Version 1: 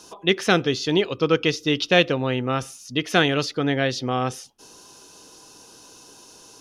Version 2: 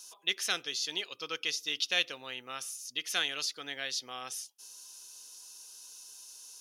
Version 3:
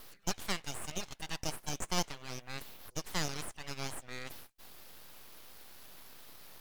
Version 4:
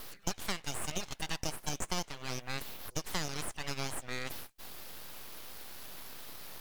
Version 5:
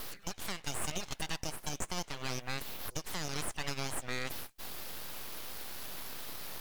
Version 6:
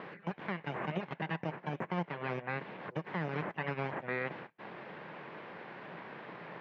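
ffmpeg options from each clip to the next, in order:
-af "aderivative"
-filter_complex "[0:a]acrossover=split=3900[s0][s1];[s1]acompressor=threshold=0.00447:ratio=6[s2];[s0][s2]amix=inputs=2:normalize=0,aeval=exprs='abs(val(0))':c=same"
-af "acompressor=threshold=0.0141:ratio=4,volume=2.11"
-af "alimiter=level_in=1.12:limit=0.0631:level=0:latency=1:release=260,volume=0.891,volume=1.58"
-af "highpass=f=150:w=0.5412,highpass=f=150:w=1.3066,equalizer=f=170:t=q:w=4:g=4,equalizer=f=260:t=q:w=4:g=-6,equalizer=f=720:t=q:w=4:g=-3,equalizer=f=1300:t=q:w=4:g=-6,lowpass=f=2000:w=0.5412,lowpass=f=2000:w=1.3066,volume=2.11"

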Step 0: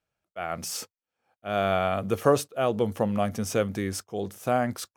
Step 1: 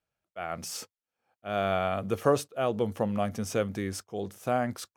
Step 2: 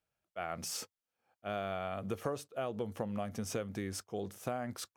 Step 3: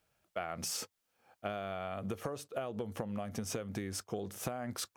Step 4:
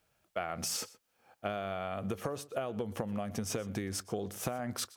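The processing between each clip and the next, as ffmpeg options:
-af "highshelf=f=10000:g=-4,volume=0.708"
-af "acompressor=threshold=0.0251:ratio=6,volume=0.841"
-af "acompressor=threshold=0.00562:ratio=12,volume=3.35"
-af "aecho=1:1:122:0.1,volume=1.33"

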